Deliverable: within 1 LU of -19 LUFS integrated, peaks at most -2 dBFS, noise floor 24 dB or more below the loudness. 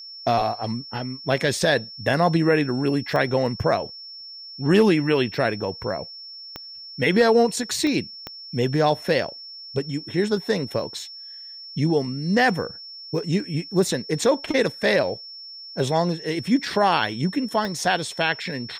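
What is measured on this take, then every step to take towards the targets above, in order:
clicks found 5; steady tone 5.4 kHz; tone level -37 dBFS; loudness -23.0 LUFS; peak level -8.5 dBFS; loudness target -19.0 LUFS
-> de-click; band-stop 5.4 kHz, Q 30; trim +4 dB

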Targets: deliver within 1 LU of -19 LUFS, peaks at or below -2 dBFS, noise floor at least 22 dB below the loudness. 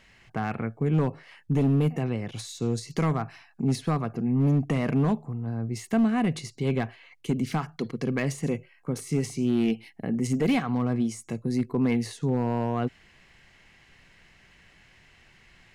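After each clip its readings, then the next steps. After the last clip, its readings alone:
clipped samples 1.1%; clipping level -17.5 dBFS; loudness -27.5 LUFS; peak level -17.5 dBFS; loudness target -19.0 LUFS
-> clip repair -17.5 dBFS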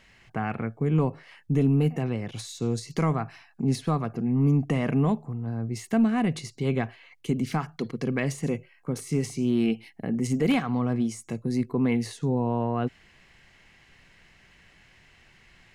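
clipped samples 0.0%; loudness -27.5 LUFS; peak level -11.5 dBFS; loudness target -19.0 LUFS
-> trim +8.5 dB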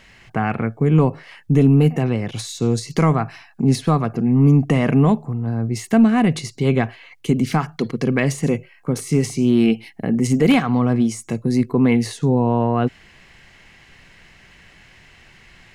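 loudness -19.0 LUFS; peak level -3.0 dBFS; noise floor -50 dBFS

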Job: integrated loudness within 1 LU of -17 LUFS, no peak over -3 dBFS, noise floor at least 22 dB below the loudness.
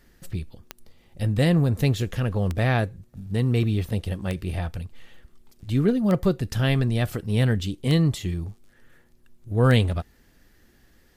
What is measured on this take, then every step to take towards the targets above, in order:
clicks found 6; loudness -24.0 LUFS; peak level -5.5 dBFS; loudness target -17.0 LUFS
-> de-click; trim +7 dB; peak limiter -3 dBFS

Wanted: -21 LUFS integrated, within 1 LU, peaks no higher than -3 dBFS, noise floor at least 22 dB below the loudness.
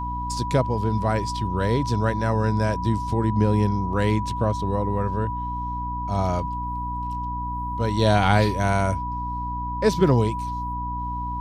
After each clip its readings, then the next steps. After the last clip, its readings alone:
hum 60 Hz; highest harmonic 300 Hz; hum level -29 dBFS; steady tone 980 Hz; tone level -28 dBFS; loudness -24.0 LUFS; peak level -5.5 dBFS; loudness target -21.0 LUFS
-> de-hum 60 Hz, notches 5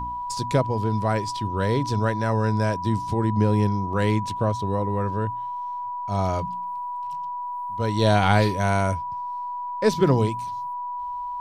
hum not found; steady tone 980 Hz; tone level -28 dBFS
-> band-stop 980 Hz, Q 30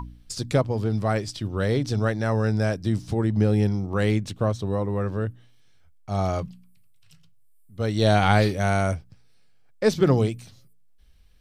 steady tone not found; loudness -24.0 LUFS; peak level -6.5 dBFS; loudness target -21.0 LUFS
-> trim +3 dB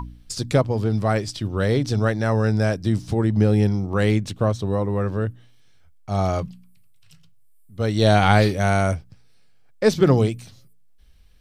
loudness -21.0 LUFS; peak level -3.5 dBFS; noise floor -50 dBFS

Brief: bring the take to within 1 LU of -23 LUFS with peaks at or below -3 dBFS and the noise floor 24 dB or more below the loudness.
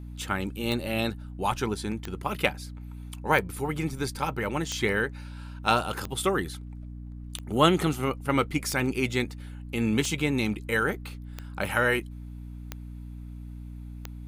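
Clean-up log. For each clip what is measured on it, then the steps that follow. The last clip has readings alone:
clicks found 11; hum 60 Hz; highest harmonic 300 Hz; hum level -37 dBFS; loudness -28.0 LUFS; peak level -6.0 dBFS; loudness target -23.0 LUFS
-> de-click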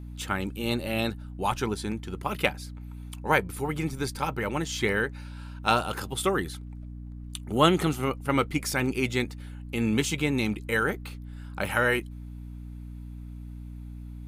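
clicks found 0; hum 60 Hz; highest harmonic 300 Hz; hum level -37 dBFS
-> hum notches 60/120/180/240/300 Hz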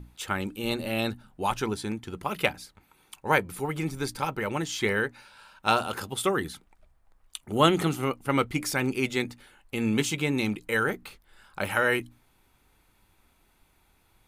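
hum not found; loudness -28.0 LUFS; peak level -6.5 dBFS; loudness target -23.0 LUFS
-> trim +5 dB; peak limiter -3 dBFS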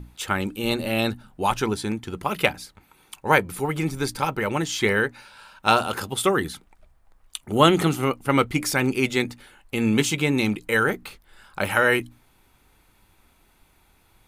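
loudness -23.5 LUFS; peak level -3.0 dBFS; noise floor -61 dBFS

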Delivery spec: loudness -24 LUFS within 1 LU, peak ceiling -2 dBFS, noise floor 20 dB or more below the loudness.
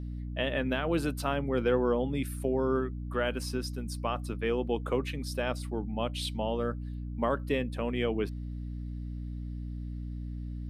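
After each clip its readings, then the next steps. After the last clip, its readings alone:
hum 60 Hz; highest harmonic 300 Hz; hum level -35 dBFS; loudness -32.5 LUFS; peak level -15.5 dBFS; loudness target -24.0 LUFS
-> hum notches 60/120/180/240/300 Hz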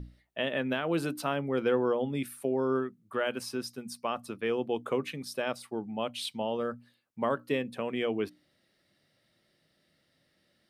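hum not found; loudness -32.5 LUFS; peak level -16.0 dBFS; loudness target -24.0 LUFS
-> trim +8.5 dB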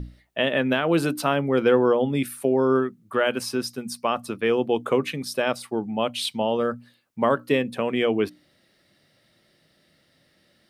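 loudness -24.0 LUFS; peak level -7.5 dBFS; noise floor -64 dBFS

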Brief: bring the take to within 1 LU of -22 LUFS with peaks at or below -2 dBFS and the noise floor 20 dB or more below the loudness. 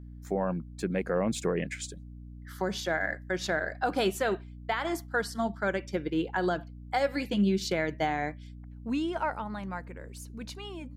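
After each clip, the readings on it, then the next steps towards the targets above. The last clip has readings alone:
hum 60 Hz; highest harmonic 300 Hz; hum level -42 dBFS; loudness -31.5 LUFS; peak level -17.5 dBFS; loudness target -22.0 LUFS
-> hum notches 60/120/180/240/300 Hz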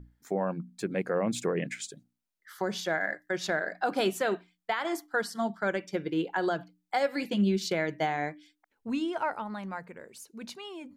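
hum not found; loudness -31.5 LUFS; peak level -16.5 dBFS; loudness target -22.0 LUFS
-> trim +9.5 dB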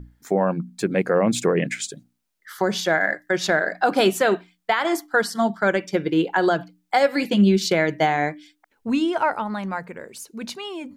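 loudness -22.0 LUFS; peak level -7.0 dBFS; noise floor -72 dBFS

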